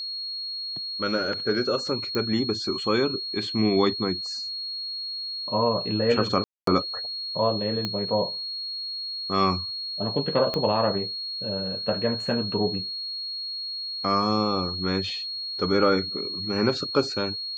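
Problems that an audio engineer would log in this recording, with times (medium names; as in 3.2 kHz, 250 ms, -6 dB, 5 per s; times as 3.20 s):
whine 4.3 kHz -30 dBFS
2.15 s: pop -15 dBFS
6.44–6.67 s: dropout 233 ms
7.85 s: pop -14 dBFS
10.54 s: pop -14 dBFS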